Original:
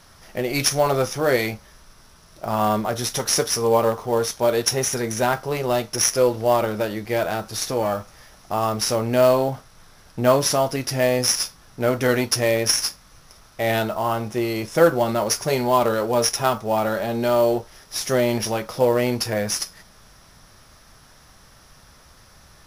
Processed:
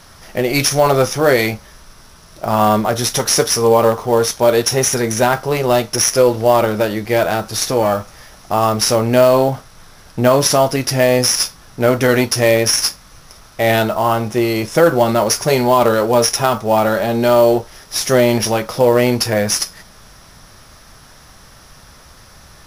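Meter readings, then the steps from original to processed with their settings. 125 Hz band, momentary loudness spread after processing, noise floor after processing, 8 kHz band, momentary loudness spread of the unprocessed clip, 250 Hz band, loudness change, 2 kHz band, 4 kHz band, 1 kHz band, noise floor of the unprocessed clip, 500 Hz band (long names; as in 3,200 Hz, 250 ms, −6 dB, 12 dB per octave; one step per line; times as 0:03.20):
+7.0 dB, 7 LU, −44 dBFS, +6.0 dB, 8 LU, +7.0 dB, +6.5 dB, +7.0 dB, +6.0 dB, +6.5 dB, −51 dBFS, +6.5 dB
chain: boost into a limiter +8.5 dB
level −1 dB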